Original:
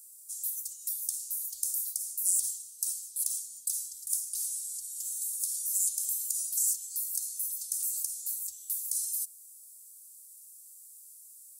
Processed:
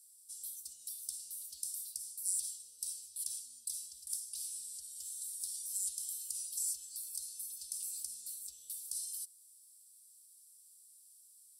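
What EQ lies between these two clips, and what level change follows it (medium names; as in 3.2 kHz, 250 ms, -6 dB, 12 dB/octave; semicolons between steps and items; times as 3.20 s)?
distance through air 57 m; peaking EQ 6.7 kHz -14 dB 0.23 oct; +1.5 dB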